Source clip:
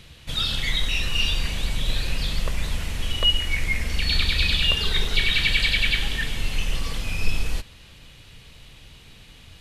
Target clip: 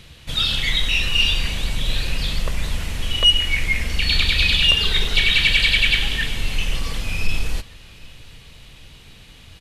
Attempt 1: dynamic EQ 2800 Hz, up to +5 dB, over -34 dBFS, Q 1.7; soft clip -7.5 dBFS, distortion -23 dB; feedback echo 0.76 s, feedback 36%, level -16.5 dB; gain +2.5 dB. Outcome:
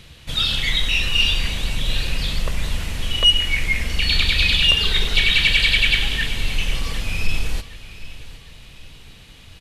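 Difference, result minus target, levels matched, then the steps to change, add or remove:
echo-to-direct +8 dB
change: feedback echo 0.76 s, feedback 36%, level -24.5 dB

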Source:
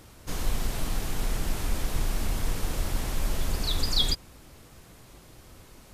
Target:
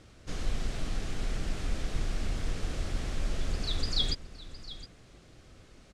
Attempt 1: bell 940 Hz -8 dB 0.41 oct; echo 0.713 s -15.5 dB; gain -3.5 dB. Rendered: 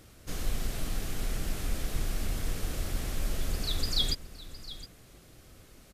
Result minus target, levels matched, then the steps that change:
8000 Hz band +4.5 dB
add first: Bessel low-pass 6000 Hz, order 4

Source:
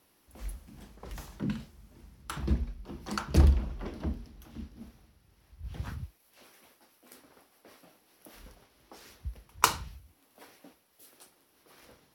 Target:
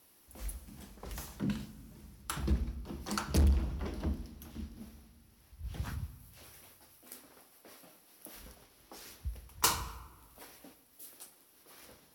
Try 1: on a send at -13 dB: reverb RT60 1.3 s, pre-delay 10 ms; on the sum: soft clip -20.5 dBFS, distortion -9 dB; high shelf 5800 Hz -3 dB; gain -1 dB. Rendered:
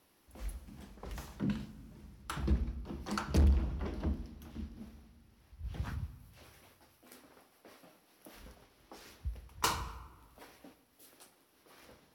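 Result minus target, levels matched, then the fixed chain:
8000 Hz band -6.5 dB
on a send at -13 dB: reverb RT60 1.3 s, pre-delay 10 ms; on the sum: soft clip -20.5 dBFS, distortion -9 dB; high shelf 5800 Hz +8.5 dB; gain -1 dB

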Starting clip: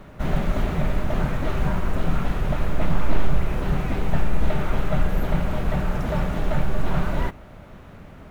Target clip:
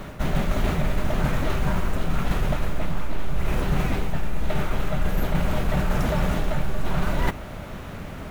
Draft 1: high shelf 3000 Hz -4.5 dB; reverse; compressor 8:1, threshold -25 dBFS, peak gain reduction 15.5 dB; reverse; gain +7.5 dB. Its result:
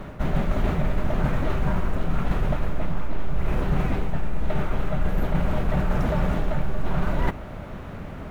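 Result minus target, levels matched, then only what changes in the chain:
8000 Hz band -9.5 dB
change: high shelf 3000 Hz +7 dB

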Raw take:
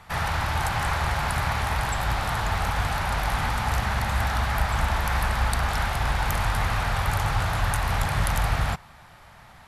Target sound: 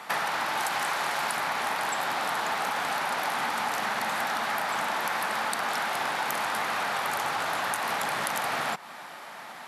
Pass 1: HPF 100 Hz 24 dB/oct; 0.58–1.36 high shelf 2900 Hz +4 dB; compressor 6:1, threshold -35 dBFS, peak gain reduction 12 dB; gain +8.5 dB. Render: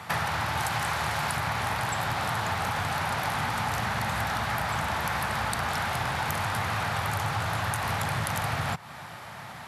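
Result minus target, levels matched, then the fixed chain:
125 Hz band +19.0 dB
HPF 240 Hz 24 dB/oct; 0.58–1.36 high shelf 2900 Hz +4 dB; compressor 6:1, threshold -35 dBFS, peak gain reduction 11.5 dB; gain +8.5 dB

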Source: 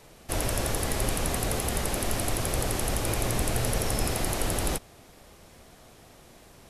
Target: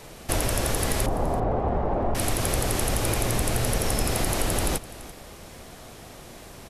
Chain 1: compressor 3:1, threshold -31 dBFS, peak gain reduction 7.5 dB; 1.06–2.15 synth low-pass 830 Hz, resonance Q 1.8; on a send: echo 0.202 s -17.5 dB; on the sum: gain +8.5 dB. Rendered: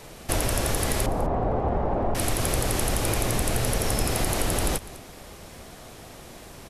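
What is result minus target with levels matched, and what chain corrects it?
echo 0.135 s early
compressor 3:1, threshold -31 dBFS, peak gain reduction 7.5 dB; 1.06–2.15 synth low-pass 830 Hz, resonance Q 1.8; on a send: echo 0.337 s -17.5 dB; on the sum: gain +8.5 dB

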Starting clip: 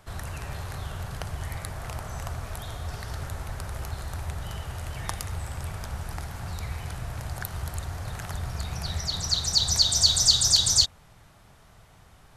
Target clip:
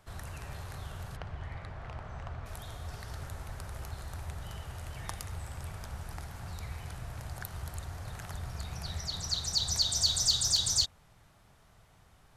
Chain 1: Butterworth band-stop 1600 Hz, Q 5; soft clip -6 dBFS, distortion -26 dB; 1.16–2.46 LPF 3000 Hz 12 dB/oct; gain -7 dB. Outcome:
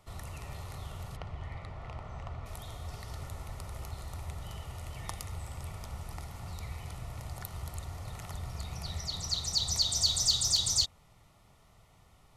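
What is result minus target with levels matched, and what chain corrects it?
2000 Hz band -3.0 dB
soft clip -6 dBFS, distortion -26 dB; 1.16–2.46 LPF 3000 Hz 12 dB/oct; gain -7 dB

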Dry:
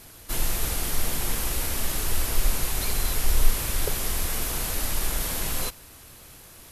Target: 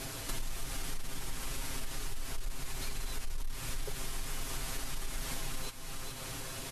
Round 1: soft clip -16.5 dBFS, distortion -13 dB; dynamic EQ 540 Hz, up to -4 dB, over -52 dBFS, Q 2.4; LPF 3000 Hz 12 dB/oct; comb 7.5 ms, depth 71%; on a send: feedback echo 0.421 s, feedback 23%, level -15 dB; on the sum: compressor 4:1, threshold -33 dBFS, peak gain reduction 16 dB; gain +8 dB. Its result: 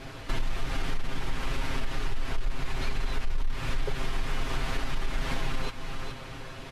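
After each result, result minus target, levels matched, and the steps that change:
8000 Hz band -12.5 dB; compressor: peak gain reduction -9 dB
change: LPF 9200 Hz 12 dB/oct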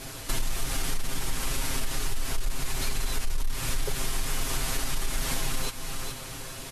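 compressor: peak gain reduction -9 dB
change: compressor 4:1, threshold -45 dBFS, peak gain reduction 25 dB

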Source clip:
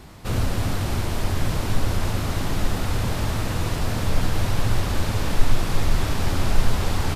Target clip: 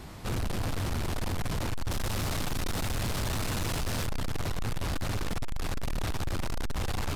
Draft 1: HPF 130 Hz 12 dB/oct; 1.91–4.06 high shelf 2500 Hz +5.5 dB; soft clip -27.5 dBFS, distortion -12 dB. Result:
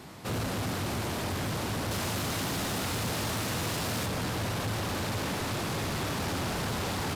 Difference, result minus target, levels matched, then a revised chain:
125 Hz band -2.5 dB
1.91–4.06 high shelf 2500 Hz +5.5 dB; soft clip -27.5 dBFS, distortion -4 dB

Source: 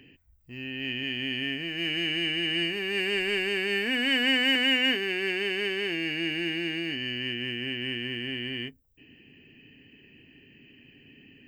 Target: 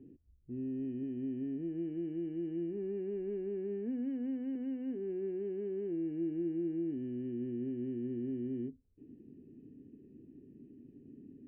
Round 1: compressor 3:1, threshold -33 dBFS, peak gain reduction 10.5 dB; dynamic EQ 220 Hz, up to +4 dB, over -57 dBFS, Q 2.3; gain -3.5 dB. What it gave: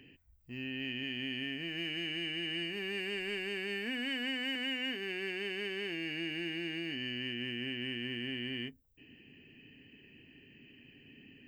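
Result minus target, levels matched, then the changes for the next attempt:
250 Hz band -6.5 dB
add after compressor: synth low-pass 350 Hz, resonance Q 2

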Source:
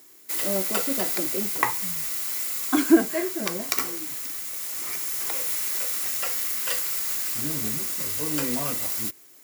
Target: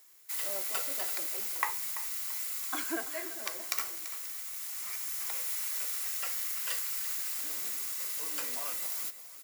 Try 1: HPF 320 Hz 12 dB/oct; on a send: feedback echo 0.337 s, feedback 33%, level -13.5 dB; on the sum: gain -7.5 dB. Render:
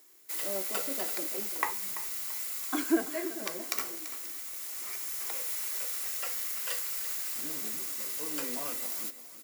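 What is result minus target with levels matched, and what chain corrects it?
250 Hz band +11.5 dB
HPF 740 Hz 12 dB/oct; on a send: feedback echo 0.337 s, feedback 33%, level -13.5 dB; on the sum: gain -7.5 dB

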